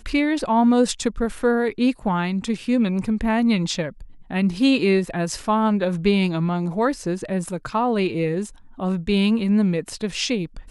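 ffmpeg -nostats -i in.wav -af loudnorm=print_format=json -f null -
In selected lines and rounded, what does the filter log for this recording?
"input_i" : "-21.9",
"input_tp" : "-5.9",
"input_lra" : "1.8",
"input_thresh" : "-32.0",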